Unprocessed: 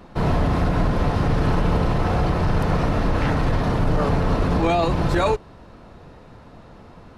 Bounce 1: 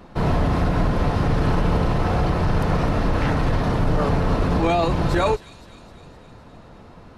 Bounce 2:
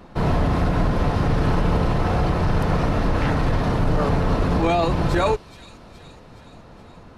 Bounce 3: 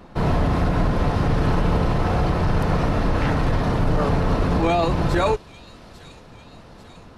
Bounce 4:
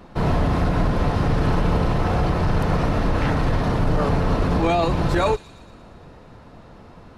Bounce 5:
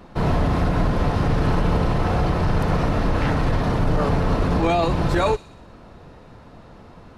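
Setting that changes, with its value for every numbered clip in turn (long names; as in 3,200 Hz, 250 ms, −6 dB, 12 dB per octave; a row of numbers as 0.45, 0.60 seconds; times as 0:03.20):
delay with a high-pass on its return, delay time: 257, 420, 845, 116, 61 milliseconds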